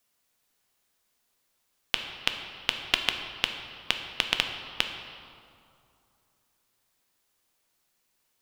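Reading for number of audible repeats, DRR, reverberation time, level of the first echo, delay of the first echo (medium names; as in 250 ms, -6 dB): no echo, 4.5 dB, 2.6 s, no echo, no echo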